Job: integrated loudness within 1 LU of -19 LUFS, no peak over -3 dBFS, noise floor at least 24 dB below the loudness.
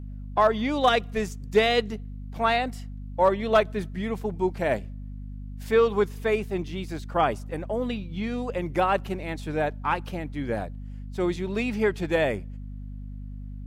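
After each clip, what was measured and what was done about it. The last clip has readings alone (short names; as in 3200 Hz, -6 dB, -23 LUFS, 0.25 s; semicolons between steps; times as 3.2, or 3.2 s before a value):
hum 50 Hz; harmonics up to 250 Hz; hum level -34 dBFS; loudness -26.0 LUFS; peak -9.0 dBFS; loudness target -19.0 LUFS
-> de-hum 50 Hz, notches 5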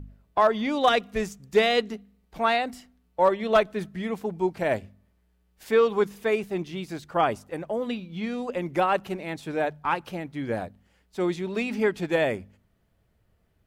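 hum none; loudness -26.5 LUFS; peak -9.0 dBFS; loudness target -19.0 LUFS
-> gain +7.5 dB; limiter -3 dBFS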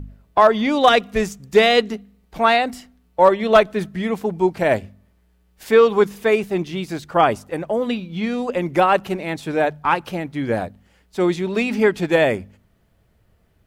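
loudness -19.0 LUFS; peak -3.0 dBFS; noise floor -60 dBFS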